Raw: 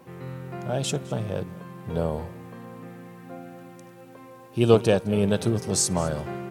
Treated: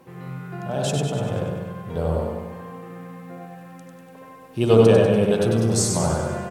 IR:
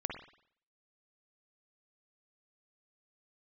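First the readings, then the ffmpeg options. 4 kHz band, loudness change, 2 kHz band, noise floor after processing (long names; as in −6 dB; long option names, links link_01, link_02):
+1.5 dB, +4.5 dB, +3.5 dB, −45 dBFS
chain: -filter_complex "[0:a]aecho=1:1:97|194|291|388|485|582|679|776:0.596|0.334|0.187|0.105|0.0586|0.0328|0.0184|0.0103[link_01];[1:a]atrim=start_sample=2205,asetrate=33516,aresample=44100[link_02];[link_01][link_02]afir=irnorm=-1:irlink=0,volume=-1dB"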